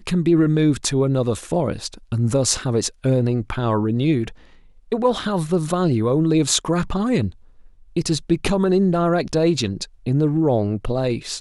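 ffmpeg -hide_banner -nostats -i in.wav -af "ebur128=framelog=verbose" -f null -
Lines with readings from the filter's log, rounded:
Integrated loudness:
  I:         -20.3 LUFS
  Threshold: -30.6 LUFS
Loudness range:
  LRA:         1.5 LU
  Threshold: -40.9 LUFS
  LRA low:   -21.6 LUFS
  LRA high:  -20.1 LUFS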